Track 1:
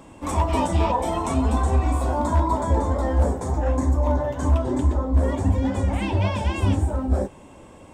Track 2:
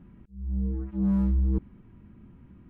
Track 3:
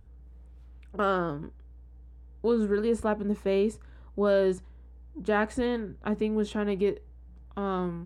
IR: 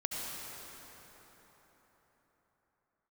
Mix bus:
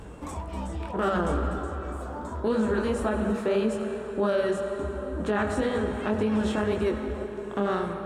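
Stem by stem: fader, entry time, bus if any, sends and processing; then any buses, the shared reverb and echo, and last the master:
-3.5 dB, 0.00 s, muted 3.33–4.79, no send, compressor 5:1, threshold -31 dBFS, peak gain reduction 15.5 dB
-7.5 dB, 0.00 s, no send, dry
+1.0 dB, 0.00 s, send -5.5 dB, per-bin compression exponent 0.6; reverb removal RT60 1.6 s; chorus 1.9 Hz, delay 18 ms, depth 6.8 ms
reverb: on, RT60 4.4 s, pre-delay 63 ms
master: limiter -16.5 dBFS, peak gain reduction 7.5 dB

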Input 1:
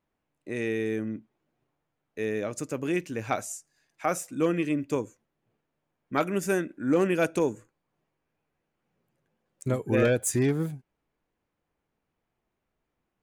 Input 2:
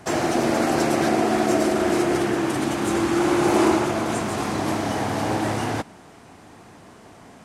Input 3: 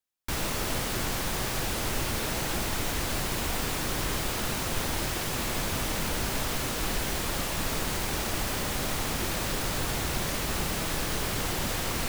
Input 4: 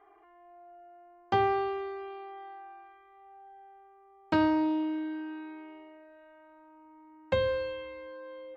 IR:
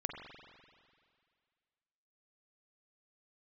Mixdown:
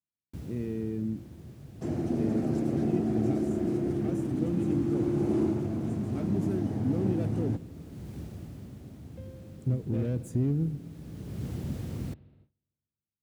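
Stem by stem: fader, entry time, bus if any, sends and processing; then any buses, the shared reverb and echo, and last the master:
+2.0 dB, 0.00 s, send -11 dB, hard clip -24 dBFS, distortion -10 dB
0.0 dB, 1.75 s, no send, dry
+2.0 dB, 0.05 s, send -14.5 dB, auto duck -18 dB, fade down 1.10 s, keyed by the first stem
-8.5 dB, 1.85 s, no send, dry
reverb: on, RT60 2.1 s, pre-delay 42 ms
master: HPF 71 Hz 24 dB/oct; gate with hold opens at -44 dBFS; EQ curve 130 Hz 0 dB, 240 Hz -3 dB, 1000 Hz -25 dB

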